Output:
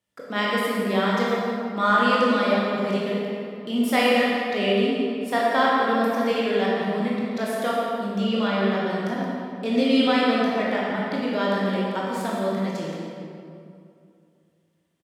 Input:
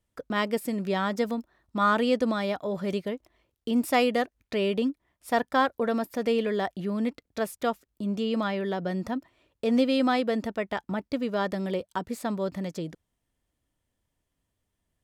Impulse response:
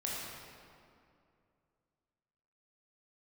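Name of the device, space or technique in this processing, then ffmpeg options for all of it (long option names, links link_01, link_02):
PA in a hall: -filter_complex "[0:a]highpass=140,equalizer=frequency=2800:width_type=o:width=2.6:gain=5,aecho=1:1:173:0.282[link_01];[1:a]atrim=start_sample=2205[link_02];[link_01][link_02]afir=irnorm=-1:irlink=0"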